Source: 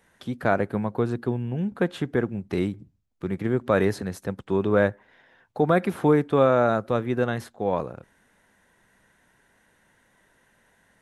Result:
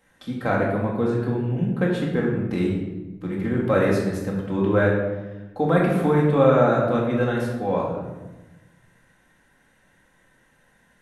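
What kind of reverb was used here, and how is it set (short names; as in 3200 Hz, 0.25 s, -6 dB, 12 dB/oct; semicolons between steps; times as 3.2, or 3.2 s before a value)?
shoebox room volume 560 m³, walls mixed, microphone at 2.1 m; gain -3 dB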